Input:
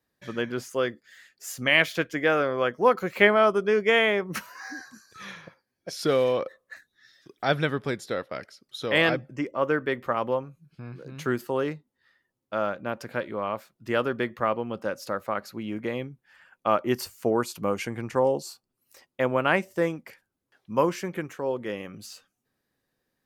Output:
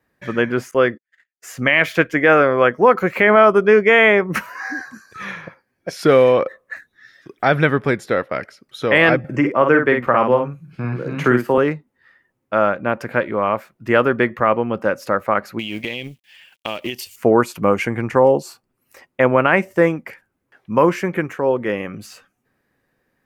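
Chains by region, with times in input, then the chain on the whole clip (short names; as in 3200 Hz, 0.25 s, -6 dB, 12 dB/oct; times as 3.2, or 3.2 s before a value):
0.71–1.8 gate -49 dBFS, range -41 dB + high shelf 8800 Hz -8 dB
9.24–11.58 high shelf 8700 Hz -4 dB + doubler 49 ms -5.5 dB + three-band squash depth 40%
15.59–17.16 G.711 law mismatch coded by A + resonant high shelf 2100 Hz +14 dB, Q 3 + compressor 12:1, threshold -30 dBFS
whole clip: resonant high shelf 2900 Hz -7 dB, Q 1.5; maximiser +11.5 dB; gain -1 dB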